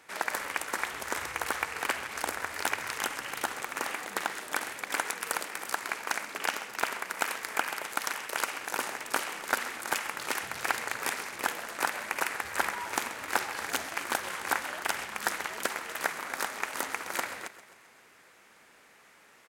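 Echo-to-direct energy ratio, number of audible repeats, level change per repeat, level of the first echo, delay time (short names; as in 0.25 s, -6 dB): -14.0 dB, 4, -5.0 dB, -15.5 dB, 0.132 s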